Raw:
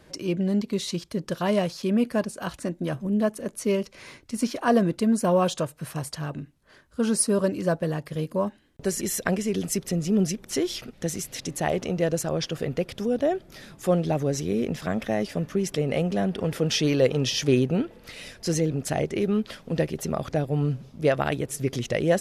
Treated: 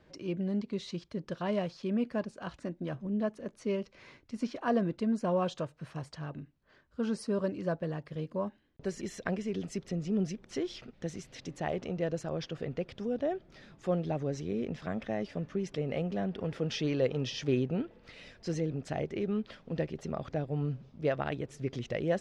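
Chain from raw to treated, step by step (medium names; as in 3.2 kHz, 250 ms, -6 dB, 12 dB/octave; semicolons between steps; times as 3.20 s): distance through air 130 m; trim -8 dB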